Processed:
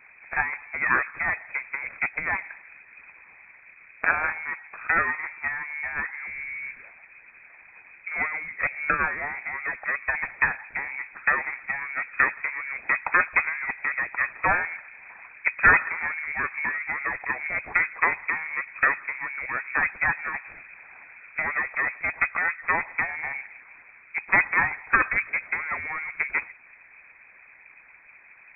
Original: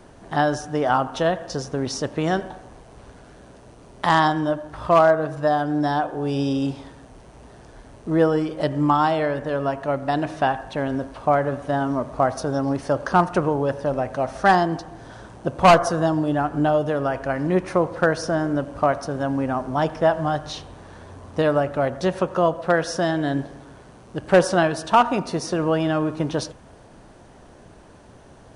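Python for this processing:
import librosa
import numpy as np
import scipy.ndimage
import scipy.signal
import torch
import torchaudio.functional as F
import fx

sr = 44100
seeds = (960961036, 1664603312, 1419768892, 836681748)

y = fx.hpss(x, sr, part='harmonic', gain_db=-13)
y = fx.cheby_harmonics(y, sr, harmonics=(6,), levels_db=(-16,), full_scale_db=-7.5)
y = fx.freq_invert(y, sr, carrier_hz=2500)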